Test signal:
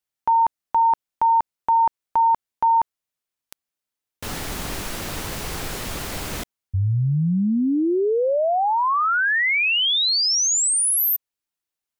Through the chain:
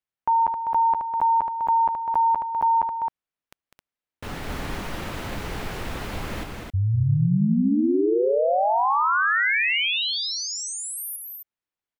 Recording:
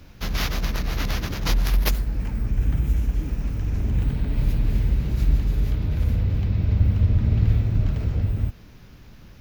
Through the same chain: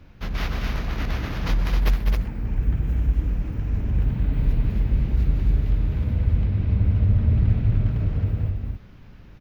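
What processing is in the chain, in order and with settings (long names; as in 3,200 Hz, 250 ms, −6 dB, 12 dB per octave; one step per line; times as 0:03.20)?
bass and treble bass +1 dB, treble −12 dB
loudspeakers that aren't time-aligned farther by 69 metres −7 dB, 91 metres −5 dB
level −2.5 dB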